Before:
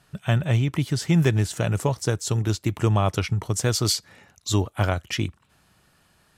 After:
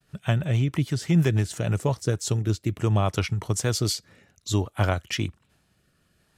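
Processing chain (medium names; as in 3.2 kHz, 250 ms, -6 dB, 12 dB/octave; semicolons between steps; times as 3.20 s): expander -58 dBFS; rotary cabinet horn 6.3 Hz, later 0.6 Hz, at 1.56 s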